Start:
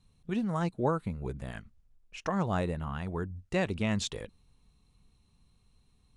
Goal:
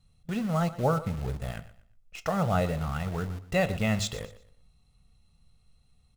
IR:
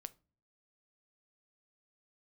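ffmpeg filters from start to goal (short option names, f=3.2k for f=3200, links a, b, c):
-filter_complex "[0:a]aecho=1:1:1.5:0.6,asplit=2[a][b];[b]acrusher=bits=5:mix=0:aa=0.000001,volume=-7dB[c];[a][c]amix=inputs=2:normalize=0,aecho=1:1:120|240|360:0.158|0.046|0.0133[d];[1:a]atrim=start_sample=2205[e];[d][e]afir=irnorm=-1:irlink=0,volume=4dB"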